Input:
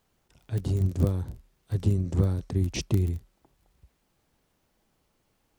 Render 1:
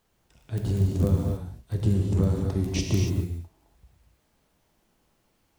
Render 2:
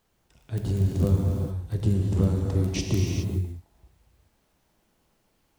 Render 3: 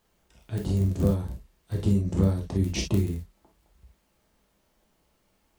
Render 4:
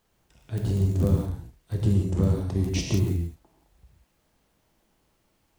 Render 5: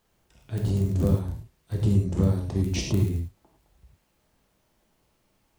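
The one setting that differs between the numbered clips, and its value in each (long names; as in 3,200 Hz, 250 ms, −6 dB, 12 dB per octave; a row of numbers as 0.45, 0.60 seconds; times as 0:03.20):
reverb whose tail is shaped and stops, gate: 310, 450, 80, 200, 130 milliseconds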